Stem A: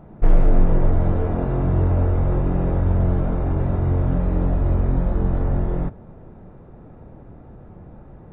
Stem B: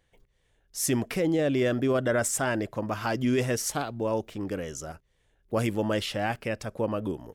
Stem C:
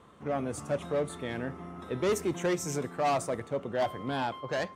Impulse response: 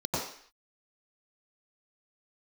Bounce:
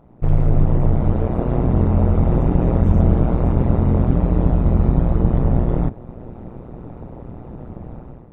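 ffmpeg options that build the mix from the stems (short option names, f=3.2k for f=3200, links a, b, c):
-filter_complex "[0:a]equalizer=f=1.6k:w=3.7:g=-6,volume=-1dB[a];[2:a]lowpass=f=1.9k:p=1,adelay=250,volume=-18dB,acompressor=threshold=-50dB:ratio=6,volume=0dB[b];[a][b]amix=inputs=2:normalize=0,dynaudnorm=f=100:g=7:m=13dB,tremolo=f=120:d=0.947"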